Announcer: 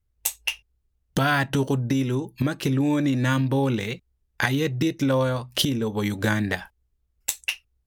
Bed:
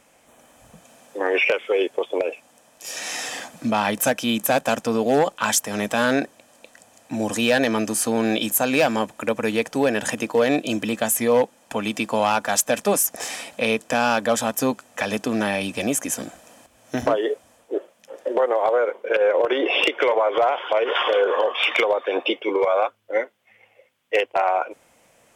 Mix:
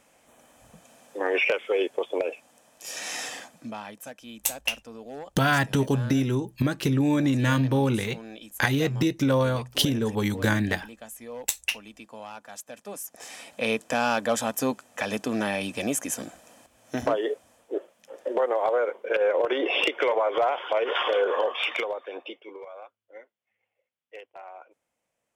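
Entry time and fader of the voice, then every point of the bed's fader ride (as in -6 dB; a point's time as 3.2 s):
4.20 s, -0.5 dB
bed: 3.24 s -4 dB
3.98 s -21 dB
12.8 s -21 dB
13.67 s -4.5 dB
21.5 s -4.5 dB
22.73 s -23.5 dB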